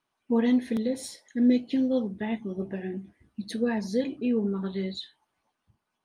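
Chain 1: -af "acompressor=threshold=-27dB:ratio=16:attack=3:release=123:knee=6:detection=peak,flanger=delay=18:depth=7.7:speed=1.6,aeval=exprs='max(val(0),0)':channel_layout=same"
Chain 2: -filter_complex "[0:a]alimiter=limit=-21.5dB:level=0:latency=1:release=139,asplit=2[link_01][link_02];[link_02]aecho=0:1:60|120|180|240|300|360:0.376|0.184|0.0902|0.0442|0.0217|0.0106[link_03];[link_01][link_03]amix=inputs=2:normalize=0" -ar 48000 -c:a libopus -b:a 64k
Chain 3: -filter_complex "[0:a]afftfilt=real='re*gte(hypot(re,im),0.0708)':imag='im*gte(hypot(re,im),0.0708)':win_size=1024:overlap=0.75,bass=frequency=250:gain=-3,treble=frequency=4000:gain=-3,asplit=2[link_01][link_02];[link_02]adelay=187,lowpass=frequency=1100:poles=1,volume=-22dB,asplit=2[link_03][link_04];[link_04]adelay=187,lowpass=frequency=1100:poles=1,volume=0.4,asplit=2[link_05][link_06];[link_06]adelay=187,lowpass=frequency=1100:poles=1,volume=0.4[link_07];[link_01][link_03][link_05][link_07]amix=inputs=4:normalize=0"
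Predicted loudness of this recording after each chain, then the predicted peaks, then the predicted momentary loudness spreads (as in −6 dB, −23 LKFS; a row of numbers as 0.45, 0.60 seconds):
−41.5, −31.0, −29.5 LKFS; −24.5, −18.5, −13.5 dBFS; 7, 8, 14 LU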